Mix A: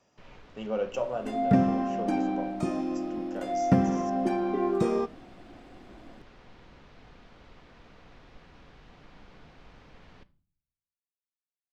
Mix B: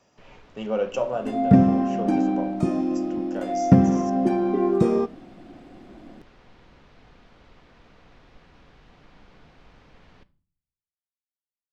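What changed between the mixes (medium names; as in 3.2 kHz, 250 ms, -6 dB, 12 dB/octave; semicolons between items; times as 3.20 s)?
speech +5.0 dB; second sound: add bass shelf 490 Hz +9 dB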